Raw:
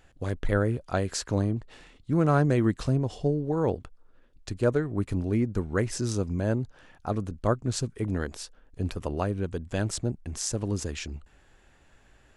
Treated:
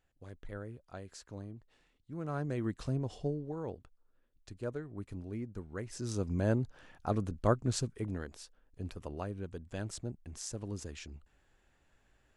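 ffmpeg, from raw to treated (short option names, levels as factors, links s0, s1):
-af "volume=1.58,afade=t=in:st=2.11:d=1.03:silence=0.266073,afade=t=out:st=3.14:d=0.5:silence=0.446684,afade=t=in:st=5.88:d=0.55:silence=0.266073,afade=t=out:st=7.65:d=0.58:silence=0.398107"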